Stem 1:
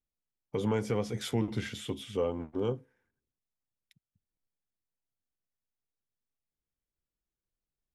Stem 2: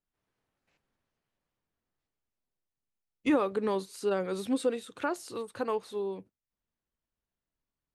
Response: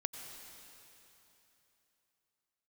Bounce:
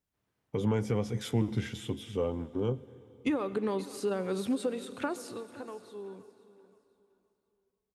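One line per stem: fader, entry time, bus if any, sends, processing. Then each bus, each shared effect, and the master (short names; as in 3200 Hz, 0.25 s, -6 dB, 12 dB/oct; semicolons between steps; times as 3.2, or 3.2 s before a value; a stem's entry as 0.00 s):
-4.0 dB, 0.00 s, send -11.5 dB, no echo send, notch 4400 Hz, Q 16
5.21 s -2.5 dB -> 5.48 s -13 dB, 0.00 s, send -5.5 dB, echo send -15 dB, compressor 6:1, threshold -30 dBFS, peak gain reduction 9 dB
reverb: on, RT60 3.3 s, pre-delay 82 ms
echo: feedback echo 0.521 s, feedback 29%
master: HPF 62 Hz; low shelf 220 Hz +7.5 dB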